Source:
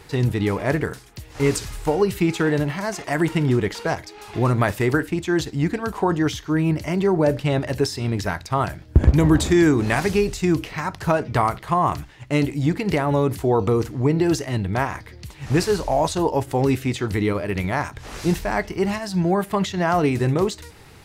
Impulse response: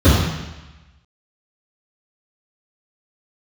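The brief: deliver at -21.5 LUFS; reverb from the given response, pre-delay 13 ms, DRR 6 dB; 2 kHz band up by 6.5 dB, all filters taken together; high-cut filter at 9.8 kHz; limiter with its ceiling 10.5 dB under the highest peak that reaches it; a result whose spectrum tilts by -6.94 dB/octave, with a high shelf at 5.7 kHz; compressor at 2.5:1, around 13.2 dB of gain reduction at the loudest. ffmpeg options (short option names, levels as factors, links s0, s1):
-filter_complex "[0:a]lowpass=9800,equalizer=f=2000:t=o:g=8.5,highshelf=f=5700:g=-4,acompressor=threshold=0.0355:ratio=2.5,alimiter=limit=0.0794:level=0:latency=1,asplit=2[s0][s1];[1:a]atrim=start_sample=2205,adelay=13[s2];[s1][s2]afir=irnorm=-1:irlink=0,volume=0.0282[s3];[s0][s3]amix=inputs=2:normalize=0,volume=1.41"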